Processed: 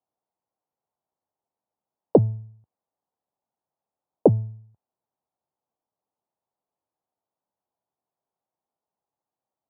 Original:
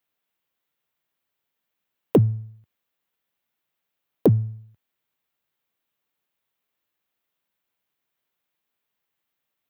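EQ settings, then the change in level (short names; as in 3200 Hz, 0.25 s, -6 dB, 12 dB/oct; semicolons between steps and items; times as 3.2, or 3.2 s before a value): dynamic EQ 600 Hz, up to +7 dB, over -33 dBFS, Q 1.3; ladder low-pass 960 Hz, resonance 50%; +6.0 dB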